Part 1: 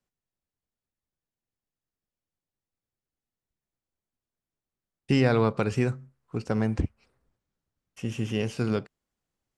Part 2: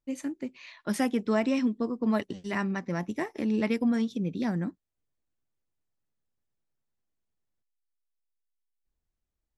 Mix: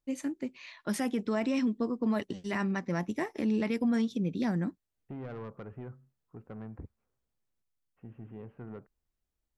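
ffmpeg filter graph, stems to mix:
-filter_complex "[0:a]lowpass=f=1600:w=0.5412,lowpass=f=1600:w=1.3066,asoftclip=type=tanh:threshold=0.0891,volume=0.178[s0];[1:a]alimiter=limit=0.0841:level=0:latency=1:release=19,volume=0.944[s1];[s0][s1]amix=inputs=2:normalize=0"

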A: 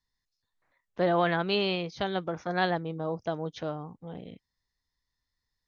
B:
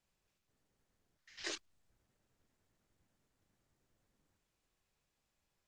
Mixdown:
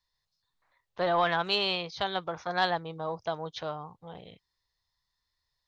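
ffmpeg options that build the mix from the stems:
-filter_complex "[0:a]asoftclip=type=tanh:threshold=0.2,volume=0.794,asplit=2[s0][s1];[1:a]equalizer=f=130:w=0.34:g=13,asplit=2[s2][s3];[s3]afreqshift=1.3[s4];[s2][s4]amix=inputs=2:normalize=1,volume=0.2[s5];[s1]apad=whole_len=250418[s6];[s5][s6]sidechaincompress=threshold=0.0224:ratio=8:attack=16:release=390[s7];[s0][s7]amix=inputs=2:normalize=0,equalizer=f=250:t=o:w=1:g=-10,equalizer=f=1000:t=o:w=1:g=7,equalizer=f=4000:t=o:w=1:g=8"

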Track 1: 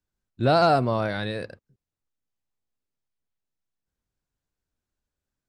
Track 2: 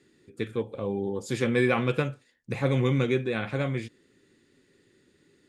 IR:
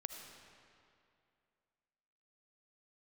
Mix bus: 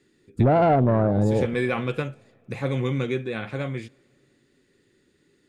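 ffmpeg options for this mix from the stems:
-filter_complex "[0:a]tiltshelf=f=1400:g=10,afwtdn=0.0708,acontrast=73,volume=0.944,asplit=2[s0][s1];[s1]volume=0.106[s2];[1:a]volume=0.841,asplit=2[s3][s4];[s4]volume=0.0794[s5];[2:a]atrim=start_sample=2205[s6];[s2][s5]amix=inputs=2:normalize=0[s7];[s7][s6]afir=irnorm=-1:irlink=0[s8];[s0][s3][s8]amix=inputs=3:normalize=0,acompressor=threshold=0.141:ratio=5"

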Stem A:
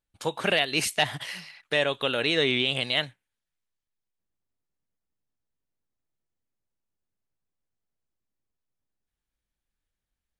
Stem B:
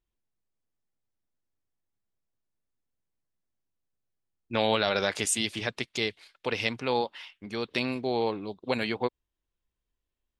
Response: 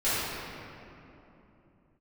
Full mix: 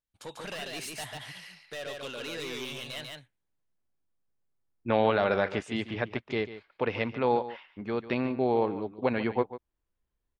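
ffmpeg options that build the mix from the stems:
-filter_complex "[0:a]asoftclip=type=tanh:threshold=0.0501,volume=0.376,asplit=2[s0][s1];[s1]volume=0.708[s2];[1:a]lowpass=1700,adelay=350,volume=1.26,asplit=2[s3][s4];[s4]volume=0.2[s5];[s2][s5]amix=inputs=2:normalize=0,aecho=0:1:144:1[s6];[s0][s3][s6]amix=inputs=3:normalize=0"

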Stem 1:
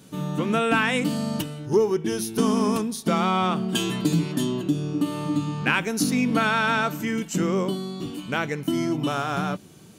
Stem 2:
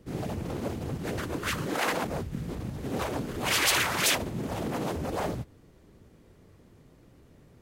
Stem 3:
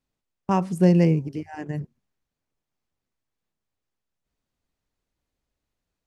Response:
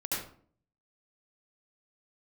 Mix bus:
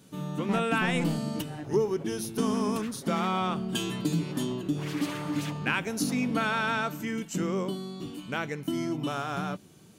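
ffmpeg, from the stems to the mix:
-filter_complex "[0:a]volume=0.501[s0];[1:a]highshelf=f=4300:g=-7,aecho=1:1:7.3:0.71,adelay=1350,volume=0.168[s1];[2:a]volume=10.6,asoftclip=hard,volume=0.0944,volume=0.398[s2];[s0][s1][s2]amix=inputs=3:normalize=0"

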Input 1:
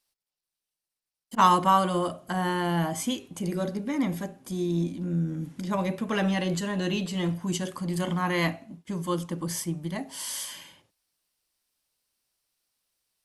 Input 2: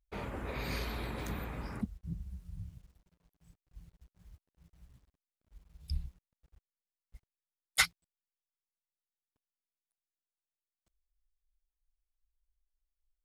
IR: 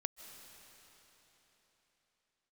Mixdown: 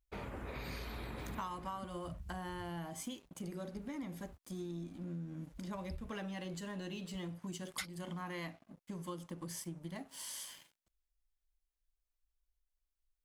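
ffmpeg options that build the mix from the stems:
-filter_complex "[0:a]aeval=exprs='sgn(val(0))*max(abs(val(0))-0.00398,0)':c=same,volume=0.376[s0];[1:a]volume=0.794[s1];[s0][s1]amix=inputs=2:normalize=0,acompressor=threshold=0.01:ratio=6"

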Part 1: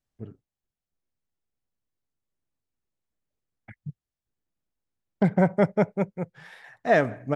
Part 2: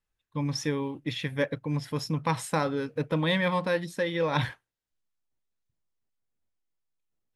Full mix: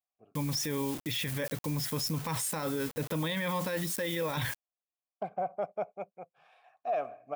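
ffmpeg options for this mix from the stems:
-filter_complex "[0:a]asplit=3[s0][s1][s2];[s0]bandpass=f=730:t=q:w=8,volume=1[s3];[s1]bandpass=f=1090:t=q:w=8,volume=0.501[s4];[s2]bandpass=f=2440:t=q:w=8,volume=0.355[s5];[s3][s4][s5]amix=inputs=3:normalize=0,volume=1[s6];[1:a]bandreject=f=4100:w=15,acrusher=bits=7:mix=0:aa=0.000001,volume=1.33[s7];[s6][s7]amix=inputs=2:normalize=0,aemphasis=mode=production:type=50kf,alimiter=limit=0.0631:level=0:latency=1:release=15"

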